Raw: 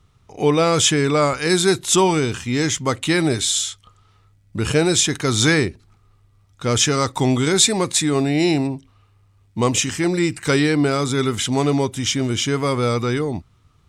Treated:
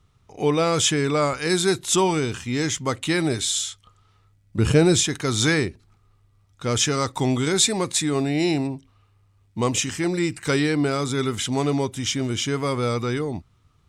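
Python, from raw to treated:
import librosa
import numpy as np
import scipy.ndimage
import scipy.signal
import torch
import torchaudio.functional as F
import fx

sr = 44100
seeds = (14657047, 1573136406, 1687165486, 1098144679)

y = fx.low_shelf(x, sr, hz=460.0, db=8.0, at=(4.58, 5.03))
y = F.gain(torch.from_numpy(y), -4.0).numpy()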